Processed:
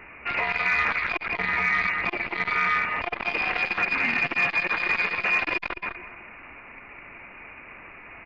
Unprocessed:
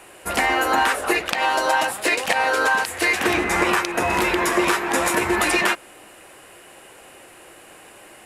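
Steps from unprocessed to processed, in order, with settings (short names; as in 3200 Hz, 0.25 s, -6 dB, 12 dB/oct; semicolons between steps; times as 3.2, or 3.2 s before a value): tracing distortion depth 0.05 ms; dynamic EQ 360 Hz, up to +7 dB, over -35 dBFS, Q 1.4; limiter -17 dBFS, peak gain reduction 13.5 dB; feedback echo 0.206 s, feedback 18%, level -5 dB; inverted band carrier 2800 Hz; core saturation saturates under 990 Hz; gain +1.5 dB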